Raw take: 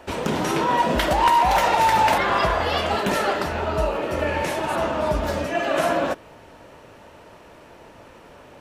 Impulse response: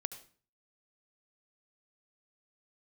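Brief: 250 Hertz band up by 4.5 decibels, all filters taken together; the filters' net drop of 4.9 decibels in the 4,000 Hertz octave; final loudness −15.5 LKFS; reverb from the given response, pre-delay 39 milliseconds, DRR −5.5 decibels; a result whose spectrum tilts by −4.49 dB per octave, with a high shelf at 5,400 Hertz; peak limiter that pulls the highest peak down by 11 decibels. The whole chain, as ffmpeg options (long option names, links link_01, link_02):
-filter_complex "[0:a]equalizer=frequency=250:width_type=o:gain=6,equalizer=frequency=4000:width_type=o:gain=-3.5,highshelf=frequency=5400:gain=-9,alimiter=limit=-19.5dB:level=0:latency=1,asplit=2[link_01][link_02];[1:a]atrim=start_sample=2205,adelay=39[link_03];[link_02][link_03]afir=irnorm=-1:irlink=0,volume=6.5dB[link_04];[link_01][link_04]amix=inputs=2:normalize=0,volume=5dB"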